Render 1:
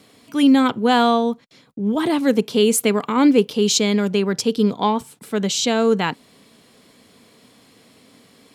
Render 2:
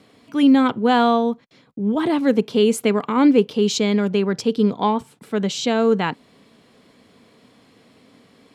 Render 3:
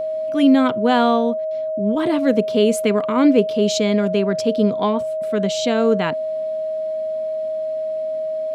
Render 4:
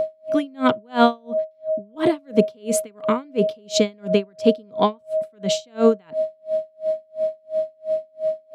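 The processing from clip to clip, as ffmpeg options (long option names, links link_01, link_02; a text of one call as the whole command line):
ffmpeg -i in.wav -af "lowpass=frequency=2800:poles=1" out.wav
ffmpeg -i in.wav -af "bandreject=frequency=860:width=12,aeval=exprs='val(0)+0.0891*sin(2*PI*630*n/s)':channel_layout=same" out.wav
ffmpeg -i in.wav -af "areverse,acompressor=mode=upward:threshold=-21dB:ratio=2.5,areverse,aeval=exprs='val(0)*pow(10,-38*(0.5-0.5*cos(2*PI*2.9*n/s))/20)':channel_layout=same,volume=4dB" out.wav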